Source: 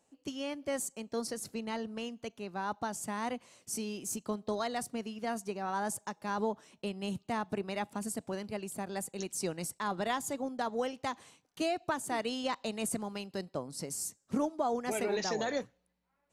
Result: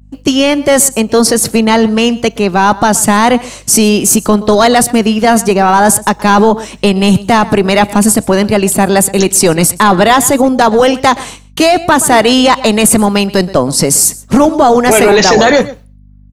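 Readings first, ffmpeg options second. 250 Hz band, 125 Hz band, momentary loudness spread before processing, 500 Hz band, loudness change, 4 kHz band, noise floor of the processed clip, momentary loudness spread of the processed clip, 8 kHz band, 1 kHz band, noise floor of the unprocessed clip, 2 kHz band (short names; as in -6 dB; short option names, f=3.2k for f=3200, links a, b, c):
+28.0 dB, +29.0 dB, 7 LU, +26.5 dB, +27.5 dB, +28.0 dB, -39 dBFS, 5 LU, +29.0 dB, +27.0 dB, -77 dBFS, +27.5 dB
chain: -af "agate=range=-33dB:threshold=-56dB:ratio=3:detection=peak,aecho=1:1:124:0.0794,adynamicequalizer=threshold=0.00158:dfrequency=5800:dqfactor=1.3:tfrequency=5800:tqfactor=1.3:attack=5:release=100:ratio=0.375:range=2:mode=cutabove:tftype=bell,apsyclip=33dB,aeval=exprs='val(0)+0.0158*(sin(2*PI*50*n/s)+sin(2*PI*2*50*n/s)/2+sin(2*PI*3*50*n/s)/3+sin(2*PI*4*50*n/s)/4+sin(2*PI*5*50*n/s)/5)':c=same,volume=-2dB"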